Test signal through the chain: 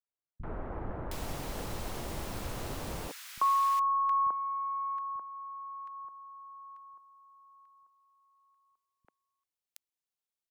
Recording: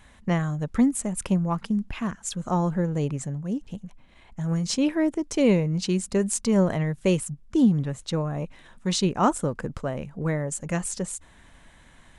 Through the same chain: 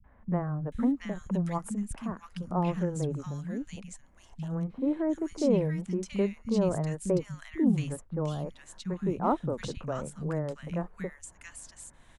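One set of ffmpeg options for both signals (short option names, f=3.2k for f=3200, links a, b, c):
-filter_complex "[0:a]aeval=exprs='0.335*(cos(1*acos(clip(val(0)/0.335,-1,1)))-cos(1*PI/2))+0.00335*(cos(2*acos(clip(val(0)/0.335,-1,1)))-cos(2*PI/2))':c=same,acrossover=split=500|1500[a][b][c];[c]acompressor=threshold=-41dB:ratio=6[d];[a][b][d]amix=inputs=3:normalize=0,acrossover=split=210|1600[e][f][g];[f]adelay=40[h];[g]adelay=720[i];[e][h][i]amix=inputs=3:normalize=0,adynamicequalizer=threshold=0.0126:dfrequency=1100:dqfactor=4.2:tfrequency=1100:tqfactor=4.2:attack=5:release=100:ratio=0.375:range=2.5:mode=cutabove:tftype=bell,volume=-3.5dB"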